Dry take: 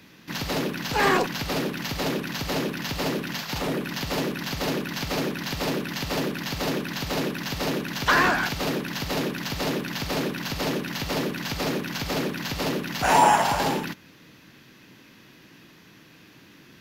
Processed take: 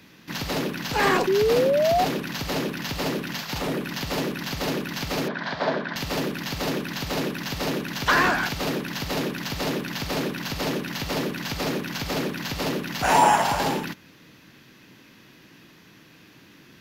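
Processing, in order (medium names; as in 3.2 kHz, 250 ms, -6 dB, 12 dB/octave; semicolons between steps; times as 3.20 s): 1.27–2.05 s: painted sound rise 370–760 Hz -20 dBFS; 5.28–5.96 s: cabinet simulation 170–4300 Hz, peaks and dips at 320 Hz -5 dB, 650 Hz +10 dB, 990 Hz +6 dB, 1.6 kHz +8 dB, 2.7 kHz -8 dB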